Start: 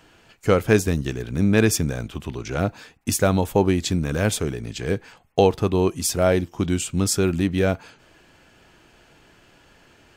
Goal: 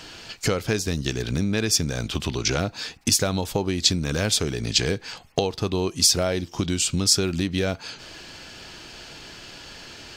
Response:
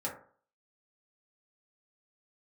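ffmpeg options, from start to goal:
-af "acompressor=threshold=-31dB:ratio=6,equalizer=f=4.7k:t=o:w=1.2:g=13.5,volume=8.5dB"

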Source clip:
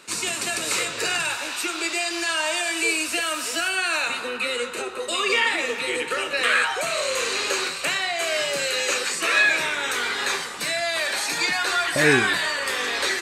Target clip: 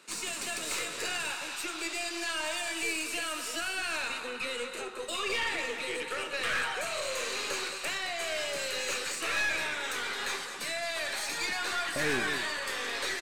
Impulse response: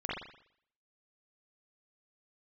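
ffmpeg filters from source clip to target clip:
-af "highpass=130,aecho=1:1:217:0.282,aeval=exprs='(tanh(7.94*val(0)+0.45)-tanh(0.45))/7.94':c=same,volume=-7dB"

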